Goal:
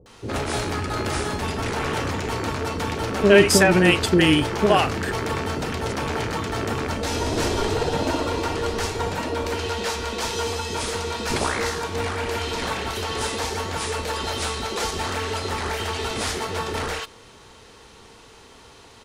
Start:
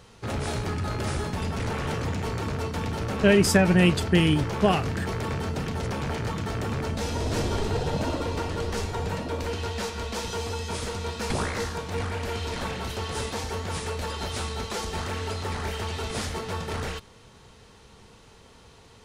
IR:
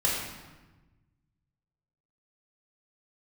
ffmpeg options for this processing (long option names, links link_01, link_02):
-filter_complex "[0:a]lowshelf=frequency=240:width_type=q:width=1.5:gain=-6,acrossover=split=490[link_01][link_02];[link_02]adelay=60[link_03];[link_01][link_03]amix=inputs=2:normalize=0,volume=6.5dB"